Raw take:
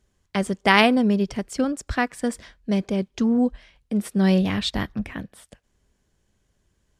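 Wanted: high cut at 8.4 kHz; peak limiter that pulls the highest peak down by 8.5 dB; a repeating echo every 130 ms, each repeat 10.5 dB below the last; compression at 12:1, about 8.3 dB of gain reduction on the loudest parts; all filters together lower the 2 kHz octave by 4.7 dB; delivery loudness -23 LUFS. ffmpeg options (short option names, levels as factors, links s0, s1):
-af "lowpass=8400,equalizer=f=2000:t=o:g=-5.5,acompressor=threshold=0.0794:ratio=12,alimiter=limit=0.1:level=0:latency=1,aecho=1:1:130|260|390:0.299|0.0896|0.0269,volume=2.37"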